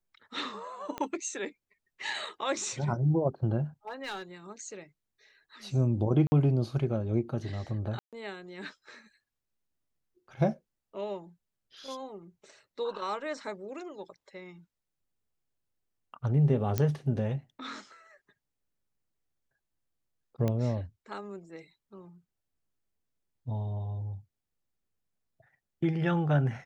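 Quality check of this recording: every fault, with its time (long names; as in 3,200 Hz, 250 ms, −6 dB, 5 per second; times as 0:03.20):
0:00.98: click −21 dBFS
0:03.87–0:04.23: clipping −32.5 dBFS
0:06.27–0:06.32: drop-out 50 ms
0:07.99–0:08.13: drop-out 137 ms
0:16.78: click −14 dBFS
0:20.48: click −18 dBFS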